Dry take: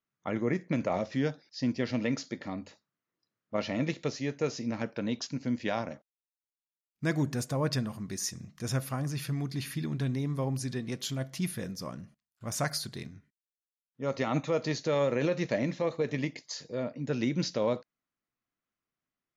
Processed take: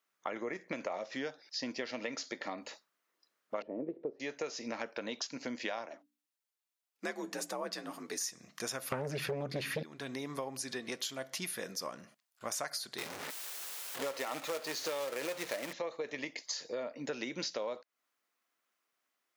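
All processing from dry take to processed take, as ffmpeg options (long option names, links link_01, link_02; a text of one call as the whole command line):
ffmpeg -i in.wav -filter_complex "[0:a]asettb=1/sr,asplit=3[link_01][link_02][link_03];[link_01]atrim=end=3.624[link_04];[link_02]atrim=start=3.62:end=4.2,asetpts=PTS-STARTPTS,afade=type=in:duration=0.004:curve=qsin,afade=type=out:start_time=0.576:duration=0.004:curve=qsin,aeval=exprs='if(lt(val(0),0),0.708*val(0),val(0))':channel_layout=same,acompressor=mode=upward:threshold=-37dB:ratio=2.5:attack=3.2:release=140:knee=2.83:detection=peak,lowpass=frequency=400:width_type=q:width=2.6[link_05];[link_03]atrim=start=4.196[link_06];[link_04][link_05]acrossfade=duration=0.004:curve1=hsin:curve2=qsin[link_07];[link_07][link_06]acrossfade=duration=0.004:curve1=qsin:curve2=hsin,asettb=1/sr,asplit=3[link_08][link_09][link_10];[link_08]atrim=end=5.864[link_11];[link_09]atrim=start=5.86:end=8.21,asetpts=PTS-STARTPTS,afade=type=in:duration=0.004:curve=qsin,afade=type=out:start_time=2.346:duration=0.004:curve=qsin,bandreject=frequency=60:width_type=h:width=6,bandreject=frequency=120:width_type=h:width=6,bandreject=frequency=180:width_type=h:width=6,bandreject=frequency=240:width_type=h:width=6,flanger=delay=2.3:depth=8.7:regen=52:speed=1.8:shape=sinusoidal,afreqshift=52[link_12];[link_10]atrim=start=8.206[link_13];[link_11][link_12]acrossfade=duration=0.004:curve1=hsin:curve2=qsin[link_14];[link_14][link_13]acrossfade=duration=0.004:curve1=qsin:curve2=hsin,asettb=1/sr,asplit=3[link_15][link_16][link_17];[link_15]atrim=end=8.924[link_18];[link_16]atrim=start=8.92:end=9.83,asetpts=PTS-STARTPTS,afade=type=in:duration=0.004:curve=qsin,afade=type=out:start_time=0.906:duration=0.004:curve=qsin,bass=frequency=250:gain=13,treble=frequency=4000:gain=-11,acontrast=36,aeval=exprs='0.398*sin(PI/2*2*val(0)/0.398)':channel_layout=same[link_19];[link_17]atrim=start=9.826[link_20];[link_18][link_19]acrossfade=duration=0.004:curve1=hsin:curve2=qsin[link_21];[link_21][link_20]acrossfade=duration=0.004:curve1=qsin:curve2=hsin,asettb=1/sr,asplit=3[link_22][link_23][link_24];[link_22]atrim=end=12.984[link_25];[link_23]atrim=start=12.98:end=15.73,asetpts=PTS-STARTPTS,afade=type=in:duration=0.004:curve=qsin,afade=type=out:start_time=2.746:duration=0.004:curve=qsin,aeval=exprs='val(0)+0.5*0.0126*sgn(val(0))':channel_layout=same,equalizer=frequency=220:width=7:gain=-7,acrusher=bits=2:mode=log:mix=0:aa=0.000001[link_26];[link_24]atrim=start=15.726[link_27];[link_25][link_26]acrossfade=duration=0.004:curve1=hsin:curve2=qsin[link_28];[link_28][link_27]acrossfade=duration=0.004:curve1=qsin:curve2=hsin,highpass=490,acompressor=threshold=-45dB:ratio=6,volume=9dB" out.wav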